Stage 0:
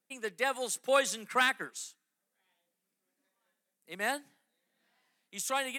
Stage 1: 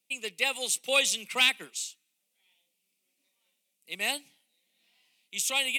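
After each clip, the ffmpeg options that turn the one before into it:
ffmpeg -i in.wav -af "highshelf=frequency=2000:width_type=q:width=3:gain=8.5,bandreject=frequency=1700:width=11,volume=-2dB" out.wav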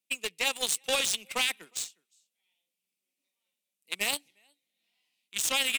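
ffmpeg -i in.wav -af "alimiter=limit=-21.5dB:level=0:latency=1:release=26,aecho=1:1:360:0.0668,aeval=exprs='0.0891*(cos(1*acos(clip(val(0)/0.0891,-1,1)))-cos(1*PI/2))+0.0224*(cos(3*acos(clip(val(0)/0.0891,-1,1)))-cos(3*PI/2))+0.00126*(cos(7*acos(clip(val(0)/0.0891,-1,1)))-cos(7*PI/2))':channel_layout=same,volume=8dB" out.wav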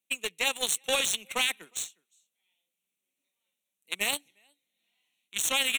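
ffmpeg -i in.wav -af "asuperstop=centerf=4900:order=4:qfactor=3.4,volume=1dB" out.wav

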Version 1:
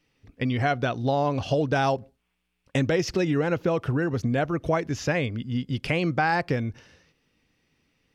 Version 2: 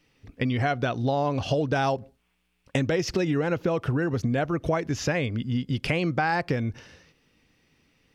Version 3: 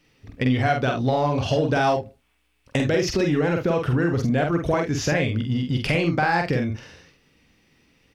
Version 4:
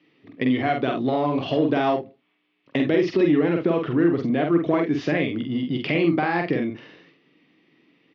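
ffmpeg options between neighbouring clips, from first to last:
ffmpeg -i in.wav -af "acompressor=threshold=-30dB:ratio=2,volume=4.5dB" out.wav
ffmpeg -i in.wav -filter_complex "[0:a]asplit=2[link_01][link_02];[link_02]volume=21.5dB,asoftclip=hard,volume=-21.5dB,volume=-8dB[link_03];[link_01][link_03]amix=inputs=2:normalize=0,aecho=1:1:47|75:0.631|0.168" out.wav
ffmpeg -i in.wav -filter_complex "[0:a]asplit=2[link_01][link_02];[link_02]aeval=exprs='clip(val(0),-1,0.0501)':channel_layout=same,volume=-9dB[link_03];[link_01][link_03]amix=inputs=2:normalize=0,highpass=frequency=170:width=0.5412,highpass=frequency=170:width=1.3066,equalizer=frequency=210:width_type=q:width=4:gain=-5,equalizer=frequency=320:width_type=q:width=4:gain=6,equalizer=frequency=530:width_type=q:width=4:gain=-5,equalizer=frequency=850:width_type=q:width=4:gain=-6,equalizer=frequency=1500:width_type=q:width=4:gain=-8,equalizer=frequency=2600:width_type=q:width=4:gain=-4,lowpass=frequency=3400:width=0.5412,lowpass=frequency=3400:width=1.3066" out.wav

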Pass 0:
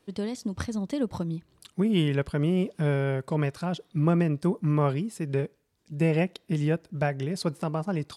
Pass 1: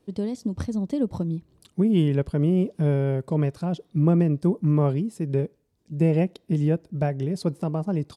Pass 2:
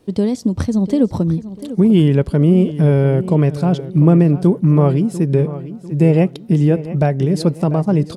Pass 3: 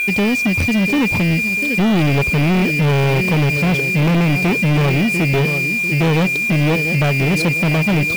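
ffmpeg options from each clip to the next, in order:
ffmpeg -i in.wav -af "firequalizer=gain_entry='entry(280,0);entry(1400,-11);entry(5100,-8)':delay=0.05:min_phase=1,volume=4dB" out.wav
ffmpeg -i in.wav -filter_complex "[0:a]asplit=2[link_01][link_02];[link_02]alimiter=limit=-18.5dB:level=0:latency=1:release=249,volume=0dB[link_03];[link_01][link_03]amix=inputs=2:normalize=0,asplit=2[link_04][link_05];[link_05]adelay=695,lowpass=frequency=4200:poles=1,volume=-14dB,asplit=2[link_06][link_07];[link_07]adelay=695,lowpass=frequency=4200:poles=1,volume=0.41,asplit=2[link_08][link_09];[link_09]adelay=695,lowpass=frequency=4200:poles=1,volume=0.41,asplit=2[link_10][link_11];[link_11]adelay=695,lowpass=frequency=4200:poles=1,volume=0.41[link_12];[link_04][link_06][link_08][link_10][link_12]amix=inputs=5:normalize=0,volume=5dB" out.wav
ffmpeg -i in.wav -af "aeval=exprs='val(0)+0.0891*sin(2*PI*2400*n/s)':channel_layout=same,acrusher=bits=5:mix=0:aa=0.000001,asoftclip=type=tanh:threshold=-18.5dB,volume=6dB" out.wav

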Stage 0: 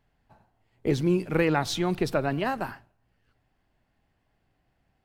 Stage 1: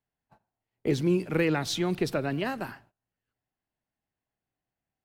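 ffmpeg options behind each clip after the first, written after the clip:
ffmpeg -i in.wav -filter_complex "[0:a]agate=range=-16dB:threshold=-55dB:ratio=16:detection=peak,lowshelf=frequency=63:gain=-12,acrossover=split=580|1400[link_01][link_02][link_03];[link_02]acompressor=threshold=-42dB:ratio=6[link_04];[link_01][link_04][link_03]amix=inputs=3:normalize=0" out.wav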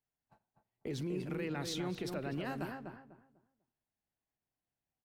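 ffmpeg -i in.wav -filter_complex "[0:a]alimiter=limit=-24dB:level=0:latency=1:release=61,asplit=2[link_01][link_02];[link_02]adelay=248,lowpass=frequency=1300:poles=1,volume=-4.5dB,asplit=2[link_03][link_04];[link_04]adelay=248,lowpass=frequency=1300:poles=1,volume=0.27,asplit=2[link_05][link_06];[link_06]adelay=248,lowpass=frequency=1300:poles=1,volume=0.27,asplit=2[link_07][link_08];[link_08]adelay=248,lowpass=frequency=1300:poles=1,volume=0.27[link_09];[link_01][link_03][link_05][link_07][link_09]amix=inputs=5:normalize=0,volume=-6.5dB" out.wav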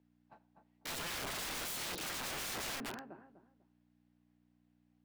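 ffmpeg -i in.wav -filter_complex "[0:a]aeval=exprs='val(0)+0.000355*(sin(2*PI*60*n/s)+sin(2*PI*2*60*n/s)/2+sin(2*PI*3*60*n/s)/3+sin(2*PI*4*60*n/s)/4+sin(2*PI*5*60*n/s)/5)':channel_layout=same,acrossover=split=190 4300:gain=0.1 1 0.178[link_01][link_02][link_03];[link_01][link_02][link_03]amix=inputs=3:normalize=0,aeval=exprs='(mod(168*val(0)+1,2)-1)/168':channel_layout=same,volume=8.5dB" out.wav

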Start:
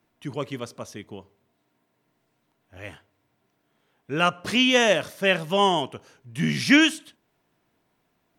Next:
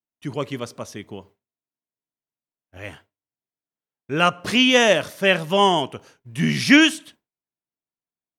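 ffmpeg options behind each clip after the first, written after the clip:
ffmpeg -i in.wav -af "agate=range=-33dB:threshold=-47dB:ratio=3:detection=peak,volume=3.5dB" out.wav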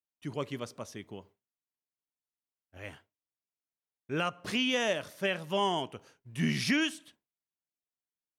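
ffmpeg -i in.wav -af "alimiter=limit=-10dB:level=0:latency=1:release=453,volume=-8.5dB" out.wav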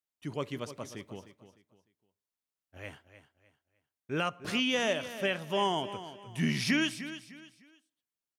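ffmpeg -i in.wav -af "aecho=1:1:303|606|909:0.224|0.0694|0.0215" out.wav

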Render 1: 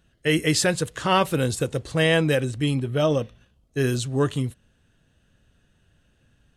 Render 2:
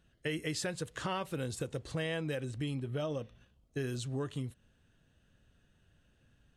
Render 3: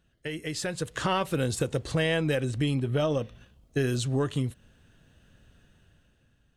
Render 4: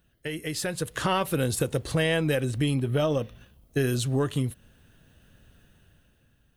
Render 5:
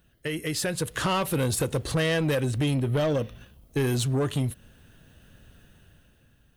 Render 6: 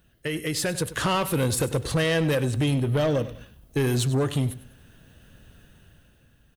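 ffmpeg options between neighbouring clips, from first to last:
ffmpeg -i in.wav -af "highshelf=frequency=8600:gain=-4.5,acompressor=threshold=-29dB:ratio=4,volume=-5.5dB" out.wav
ffmpeg -i in.wav -af "aeval=exprs='0.0794*(cos(1*acos(clip(val(0)/0.0794,-1,1)))-cos(1*PI/2))+0.00631*(cos(2*acos(clip(val(0)/0.0794,-1,1)))-cos(2*PI/2))':channel_layout=same,dynaudnorm=framelen=140:gausssize=11:maxgain=9.5dB" out.wav
ffmpeg -i in.wav -af "aexciter=amount=4.6:drive=1.4:freq=9900,volume=1.5dB" out.wav
ffmpeg -i in.wav -af "asoftclip=type=tanh:threshold=-23dB,volume=3.5dB" out.wav
ffmpeg -i in.wav -af "aecho=1:1:98|196|294:0.168|0.0537|0.0172,volume=1.5dB" out.wav

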